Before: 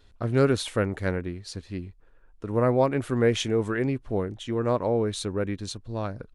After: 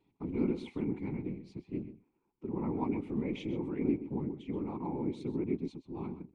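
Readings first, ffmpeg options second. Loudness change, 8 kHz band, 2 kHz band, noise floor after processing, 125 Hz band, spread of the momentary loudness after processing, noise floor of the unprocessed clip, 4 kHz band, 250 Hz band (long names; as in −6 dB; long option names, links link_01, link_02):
−10.0 dB, below −30 dB, −18.5 dB, −77 dBFS, −12.0 dB, 9 LU, −57 dBFS, −20.5 dB, −4.5 dB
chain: -filter_complex "[0:a]equalizer=frequency=180:width_type=o:width=0.62:gain=14.5,asplit=2[link_01][link_02];[link_02]alimiter=limit=-17dB:level=0:latency=1,volume=2.5dB[link_03];[link_01][link_03]amix=inputs=2:normalize=0,asplit=3[link_04][link_05][link_06];[link_04]bandpass=frequency=300:width_type=q:width=8,volume=0dB[link_07];[link_05]bandpass=frequency=870:width_type=q:width=8,volume=-6dB[link_08];[link_06]bandpass=frequency=2240:width_type=q:width=8,volume=-9dB[link_09];[link_07][link_08][link_09]amix=inputs=3:normalize=0,afftfilt=real='hypot(re,im)*cos(2*PI*random(0))':imag='hypot(re,im)*sin(2*PI*random(1))':win_size=512:overlap=0.75,asplit=2[link_10][link_11];[link_11]adelay=128.3,volume=-13dB,highshelf=frequency=4000:gain=-2.89[link_12];[link_10][link_12]amix=inputs=2:normalize=0"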